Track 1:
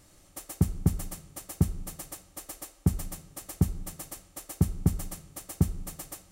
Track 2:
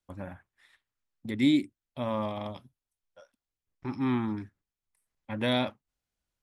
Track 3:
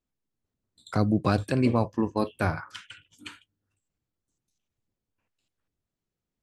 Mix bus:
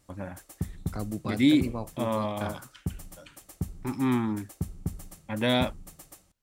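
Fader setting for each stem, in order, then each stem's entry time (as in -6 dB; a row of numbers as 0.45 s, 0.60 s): -8.0 dB, +2.5 dB, -10.5 dB; 0.00 s, 0.00 s, 0.00 s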